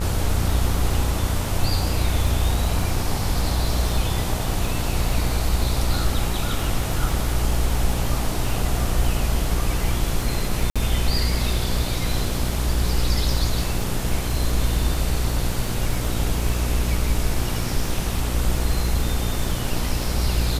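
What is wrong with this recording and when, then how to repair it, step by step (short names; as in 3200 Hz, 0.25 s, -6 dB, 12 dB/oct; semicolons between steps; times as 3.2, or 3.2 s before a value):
buzz 60 Hz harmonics 25 -26 dBFS
crackle 33/s -28 dBFS
10.7–10.76 gap 56 ms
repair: de-click; de-hum 60 Hz, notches 25; interpolate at 10.7, 56 ms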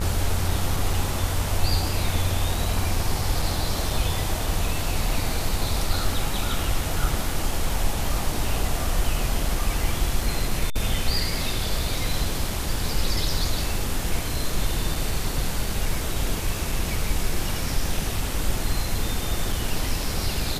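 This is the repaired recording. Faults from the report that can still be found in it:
none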